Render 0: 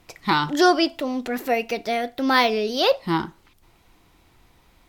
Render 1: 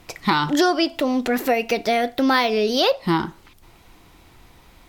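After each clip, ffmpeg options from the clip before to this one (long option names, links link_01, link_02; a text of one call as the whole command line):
ffmpeg -i in.wav -af "acompressor=threshold=-23dB:ratio=4,volume=7dB" out.wav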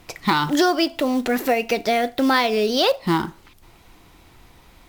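ffmpeg -i in.wav -af "acrusher=bits=6:mode=log:mix=0:aa=0.000001" out.wav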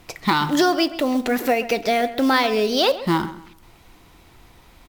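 ffmpeg -i in.wav -filter_complex "[0:a]asplit=2[link_01][link_02];[link_02]adelay=132,lowpass=frequency=2700:poles=1,volume=-14dB,asplit=2[link_03][link_04];[link_04]adelay=132,lowpass=frequency=2700:poles=1,volume=0.3,asplit=2[link_05][link_06];[link_06]adelay=132,lowpass=frequency=2700:poles=1,volume=0.3[link_07];[link_01][link_03][link_05][link_07]amix=inputs=4:normalize=0" out.wav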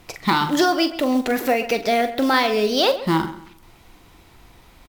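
ffmpeg -i in.wav -filter_complex "[0:a]asplit=2[link_01][link_02];[link_02]adelay=43,volume=-10.5dB[link_03];[link_01][link_03]amix=inputs=2:normalize=0" out.wav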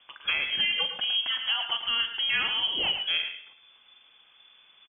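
ffmpeg -i in.wav -filter_complex "[0:a]asplit=2[link_01][link_02];[link_02]adelay=110,highpass=300,lowpass=3400,asoftclip=type=hard:threshold=-13dB,volume=-7dB[link_03];[link_01][link_03]amix=inputs=2:normalize=0,lowpass=frequency=3000:width_type=q:width=0.5098,lowpass=frequency=3000:width_type=q:width=0.6013,lowpass=frequency=3000:width_type=q:width=0.9,lowpass=frequency=3000:width_type=q:width=2.563,afreqshift=-3500,volume=-9dB" out.wav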